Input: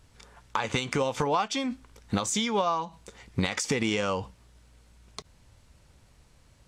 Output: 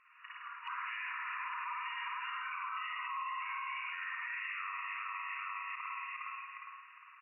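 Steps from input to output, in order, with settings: gliding tape speed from 81% -> 104%; comb 1.6 ms, depth 33%; on a send: feedback delay 408 ms, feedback 48%, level -6 dB; on the sum: spring tank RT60 1.4 s, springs 51 ms, chirp 35 ms, DRR -5 dB; ever faster or slower copies 107 ms, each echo +3 st, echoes 3, each echo -6 dB; FFT band-pass 940–2900 Hz; compression 4:1, threshold -45 dBFS, peak gain reduction 19 dB; spectral noise reduction 6 dB; peak limiter -41 dBFS, peak gain reduction 10.5 dB; trim +9 dB

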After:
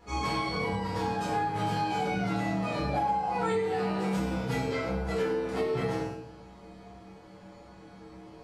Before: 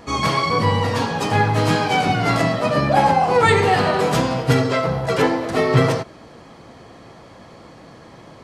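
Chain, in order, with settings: feedback comb 64 Hz, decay 0.62 s, harmonics odd, mix 90%; simulated room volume 470 m³, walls furnished, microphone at 4.1 m; compression 6:1, threshold -23 dBFS, peak gain reduction 11.5 dB; hum notches 50/100 Hz; trim -3 dB

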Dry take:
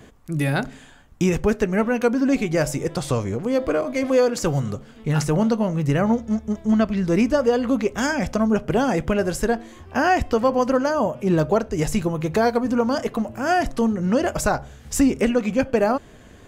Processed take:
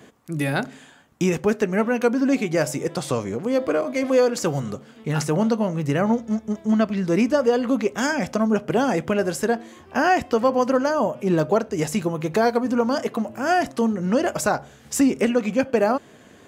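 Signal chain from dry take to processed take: high-pass 160 Hz 12 dB/octave

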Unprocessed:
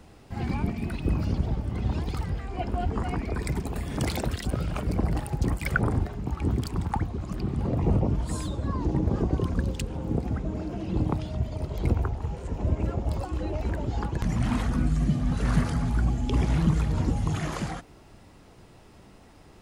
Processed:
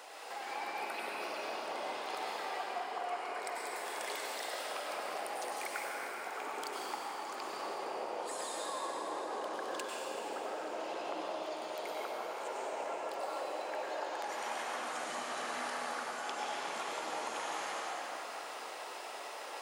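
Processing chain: high-pass 560 Hz 24 dB/octave; compression 6:1, threshold -51 dBFS, peak gain reduction 28.5 dB; reverberation RT60 4.8 s, pre-delay 90 ms, DRR -5.5 dB; trim +7.5 dB

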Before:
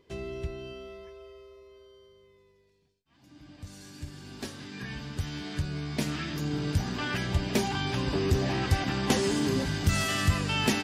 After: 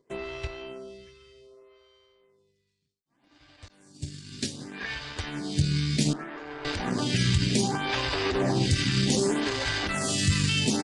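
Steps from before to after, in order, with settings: 3.68–4.33 s: expander -42 dBFS; graphic EQ 125/250/500/1000/2000/4000/8000 Hz +8/+4/+4/+3/+6/+8/+10 dB; peak limiter -16 dBFS, peak gain reduction 10.5 dB; 6.13–6.65 s: three-band isolator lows -15 dB, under 300 Hz, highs -22 dB, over 2 kHz; power-law waveshaper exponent 1.4; resampled via 22.05 kHz; lamp-driven phase shifter 0.65 Hz; trim +5 dB

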